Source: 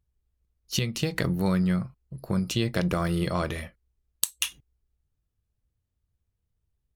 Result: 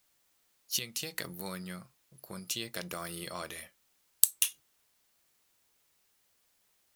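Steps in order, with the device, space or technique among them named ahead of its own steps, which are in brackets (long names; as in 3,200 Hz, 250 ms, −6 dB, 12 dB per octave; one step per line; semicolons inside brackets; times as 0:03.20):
turntable without a phono preamp (RIAA equalisation recording; white noise bed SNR 33 dB)
level −10.5 dB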